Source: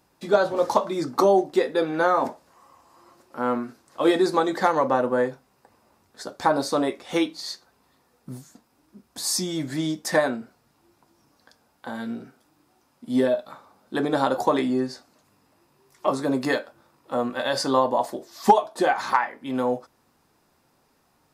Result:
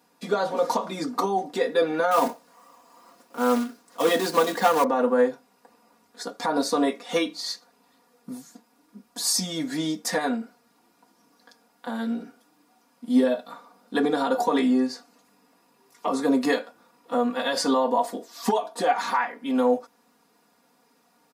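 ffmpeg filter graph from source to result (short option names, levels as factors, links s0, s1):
-filter_complex "[0:a]asettb=1/sr,asplit=3[s0][s1][s2];[s0]atrim=end=2.114[s3];[s1]atrim=start=2.11:end=4.84,asetpts=PTS-STARTPTS,afade=t=in:d=0.004:c=qsin,afade=t=out:st=2.726:d=0.004:c=qsin,acrusher=bits=3:mode=log:mix=0:aa=0.000001,asoftclip=type=hard:threshold=0.188[s4];[s2]atrim=start=4.836[s5];[s3][s4]acrossfade=d=0.004:c1=hsin:c2=qsin[s6];[s6][s5]acrossfade=d=0.004:c1=qsin:c2=hsin,alimiter=limit=0.2:level=0:latency=1:release=69,highpass=170,aecho=1:1:4.2:0.99,volume=0.891"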